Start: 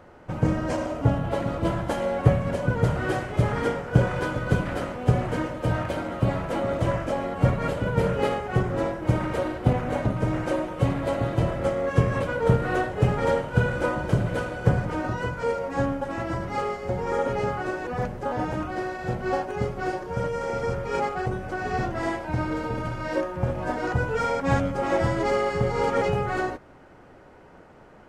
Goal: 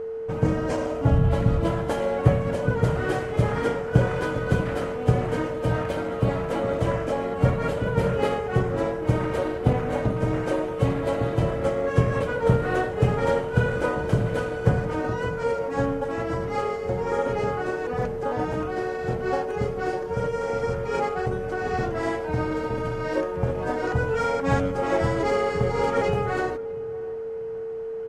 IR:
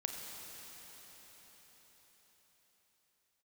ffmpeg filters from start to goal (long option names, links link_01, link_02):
-filter_complex "[0:a]asplit=2[link_01][link_02];[link_02]adelay=639,lowpass=frequency=1000:poles=1,volume=-19dB,asplit=2[link_03][link_04];[link_04]adelay=639,lowpass=frequency=1000:poles=1,volume=0.47,asplit=2[link_05][link_06];[link_06]adelay=639,lowpass=frequency=1000:poles=1,volume=0.47,asplit=2[link_07][link_08];[link_08]adelay=639,lowpass=frequency=1000:poles=1,volume=0.47[link_09];[link_01][link_03][link_05][link_07][link_09]amix=inputs=5:normalize=0,asplit=3[link_10][link_11][link_12];[link_10]afade=type=out:start_time=1.11:duration=0.02[link_13];[link_11]asubboost=boost=11:cutoff=160,afade=type=in:start_time=1.11:duration=0.02,afade=type=out:start_time=1.6:duration=0.02[link_14];[link_12]afade=type=in:start_time=1.6:duration=0.02[link_15];[link_13][link_14][link_15]amix=inputs=3:normalize=0,aeval=exprs='val(0)+0.0355*sin(2*PI*450*n/s)':channel_layout=same"